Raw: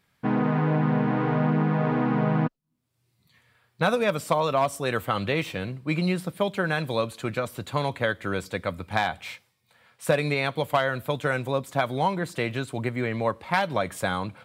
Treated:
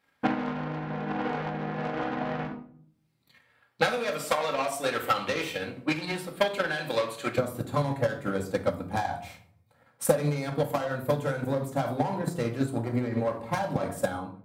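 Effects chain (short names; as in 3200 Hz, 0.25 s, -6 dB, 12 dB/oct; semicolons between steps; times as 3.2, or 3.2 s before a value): ending faded out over 0.55 s; soft clip -23.5 dBFS, distortion -10 dB; low shelf 370 Hz -3.5 dB; notch 1100 Hz, Q 24; shoebox room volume 830 m³, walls furnished, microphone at 2.2 m; limiter -20 dBFS, peak gain reduction 6 dB; bell 130 Hz -11 dB 1.9 oct, from 7.38 s 2800 Hz; transient shaper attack +11 dB, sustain -1 dB; HPF 62 Hz; mismatched tape noise reduction decoder only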